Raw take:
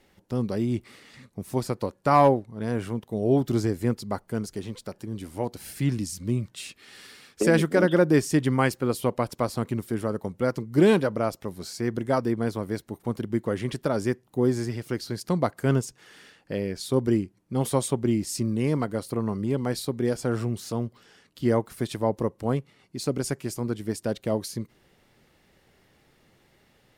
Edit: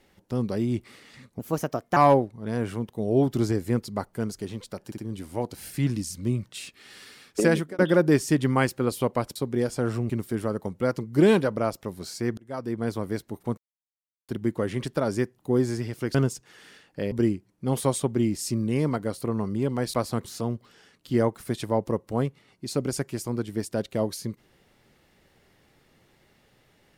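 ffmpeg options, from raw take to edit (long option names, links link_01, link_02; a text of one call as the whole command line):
ffmpeg -i in.wav -filter_complex "[0:a]asplit=14[link_01][link_02][link_03][link_04][link_05][link_06][link_07][link_08][link_09][link_10][link_11][link_12][link_13][link_14];[link_01]atrim=end=1.394[link_15];[link_02]atrim=start=1.39:end=2.11,asetpts=PTS-STARTPTS,asetrate=55125,aresample=44100[link_16];[link_03]atrim=start=2.106:end=5.062[link_17];[link_04]atrim=start=4.998:end=5.062[link_18];[link_05]atrim=start=4.998:end=7.81,asetpts=PTS-STARTPTS,afade=type=out:start_time=2.492:duration=0.32[link_19];[link_06]atrim=start=7.81:end=9.382,asetpts=PTS-STARTPTS,afade=type=in:duration=0.004:curve=hsin[link_20];[link_07]atrim=start=19.818:end=20.562[link_21];[link_08]atrim=start=9.688:end=11.97,asetpts=PTS-STARTPTS,afade=type=out:start_time=2.278:duration=0.004:curve=hsin[link_22];[link_09]atrim=start=11.97:end=13.17,asetpts=PTS-STARTPTS,afade=type=in:duration=0.56,afade=type=out:start_time=1.196:duration=0.004:curve=hsin,apad=pad_dur=0.71[link_23];[link_10]atrim=start=13.17:end=15.032,asetpts=PTS-STARTPTS,afade=type=in:duration=0.004:curve=hsin[link_24];[link_11]atrim=start=15.668:end=16.642[link_25];[link_12]atrim=start=16.998:end=19.822[link_26];[link_13]atrim=start=9.378:end=9.692[link_27];[link_14]atrim=start=20.558[link_28];[link_15][link_16]acrossfade=duration=0.004:curve1=hsin:curve2=hsin[link_29];[link_29][link_17]acrossfade=duration=0.004:curve1=hsin:curve2=hsin[link_30];[link_30][link_18]acrossfade=duration=0.004:curve1=hsin:curve2=hsin[link_31];[link_19][link_20]concat=n=2:v=0:a=1[link_32];[link_31][link_32]acrossfade=duration=0.004:curve1=hsin:curve2=hsin[link_33];[link_33][link_21]acrossfade=duration=0.004:curve1=hsin:curve2=hsin[link_34];[link_22][link_23][link_24]concat=n=3:v=0:a=1[link_35];[link_34][link_35]acrossfade=duration=0.004:curve1=hsin:curve2=hsin[link_36];[link_36][link_25]acrossfade=duration=0.004:curve1=hsin:curve2=hsin[link_37];[link_37][link_26]acrossfade=duration=0.004:curve1=hsin:curve2=hsin[link_38];[link_38][link_27]acrossfade=duration=0.004:curve1=hsin:curve2=hsin[link_39];[link_39][link_28]acrossfade=duration=0.004:curve1=hsin:curve2=hsin" out.wav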